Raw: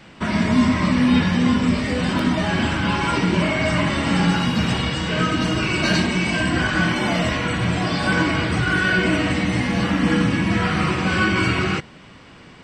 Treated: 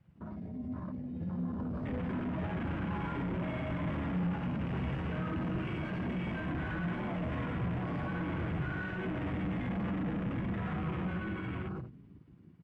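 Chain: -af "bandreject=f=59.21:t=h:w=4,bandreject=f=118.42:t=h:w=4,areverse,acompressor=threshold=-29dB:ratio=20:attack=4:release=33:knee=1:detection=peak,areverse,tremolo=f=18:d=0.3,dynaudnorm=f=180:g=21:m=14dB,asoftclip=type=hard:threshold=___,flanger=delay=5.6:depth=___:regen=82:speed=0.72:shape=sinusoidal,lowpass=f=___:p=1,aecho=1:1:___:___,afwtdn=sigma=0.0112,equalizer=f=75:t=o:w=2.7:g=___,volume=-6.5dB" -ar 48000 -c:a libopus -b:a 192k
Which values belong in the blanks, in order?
-24dB, 2.3, 1300, 90, 0.299, 6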